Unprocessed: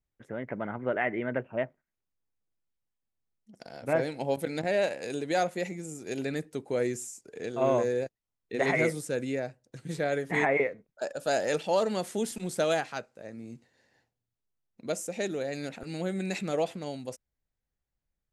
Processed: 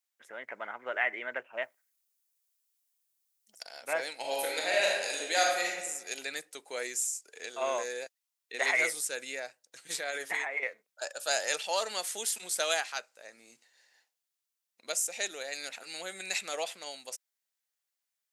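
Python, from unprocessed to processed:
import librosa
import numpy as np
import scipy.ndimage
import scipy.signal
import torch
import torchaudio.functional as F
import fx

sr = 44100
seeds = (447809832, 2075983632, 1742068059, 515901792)

y = fx.high_shelf(x, sr, hz=6000.0, db=11.0, at=(1.62, 3.63))
y = fx.reverb_throw(y, sr, start_s=4.15, length_s=1.55, rt60_s=1.1, drr_db=-2.5)
y = fx.over_compress(y, sr, threshold_db=-31.0, ratio=-1.0, at=(9.9, 10.63))
y = scipy.signal.sosfilt(scipy.signal.butter(2, 770.0, 'highpass', fs=sr, output='sos'), y)
y = fx.high_shelf(y, sr, hz=2300.0, db=11.5)
y = y * 10.0 ** (-2.0 / 20.0)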